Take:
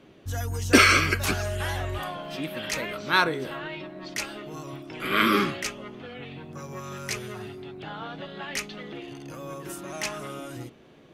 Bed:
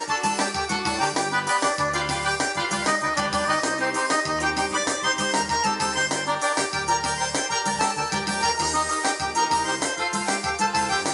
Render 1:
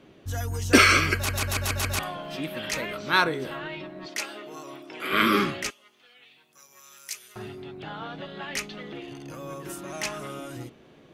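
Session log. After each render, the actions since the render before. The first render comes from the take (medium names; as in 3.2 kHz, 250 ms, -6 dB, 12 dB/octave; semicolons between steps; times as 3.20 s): 1.15 s: stutter in place 0.14 s, 6 plays; 4.06–5.13 s: high-pass 320 Hz; 5.70–7.36 s: differentiator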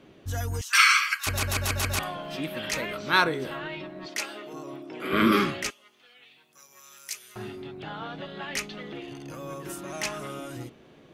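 0.61–1.27 s: elliptic high-pass 1.1 kHz, stop band 60 dB; 4.53–5.32 s: tilt shelf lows +6 dB, about 740 Hz; 7.25–7.68 s: doubling 25 ms -7 dB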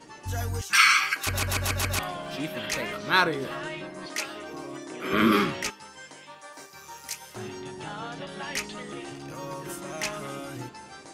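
add bed -22 dB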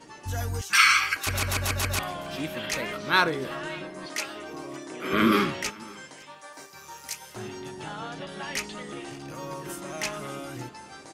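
delay 558 ms -23.5 dB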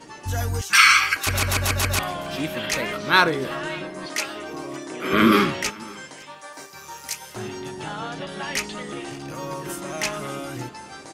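trim +5 dB; peak limiter -1 dBFS, peak gain reduction 1.5 dB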